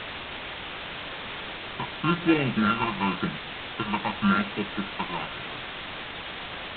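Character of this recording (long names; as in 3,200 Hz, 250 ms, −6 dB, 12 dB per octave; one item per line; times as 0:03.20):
a buzz of ramps at a fixed pitch in blocks of 32 samples
phaser sweep stages 8, 0.93 Hz, lowest notch 420–1,200 Hz
a quantiser's noise floor 6 bits, dither triangular
G.726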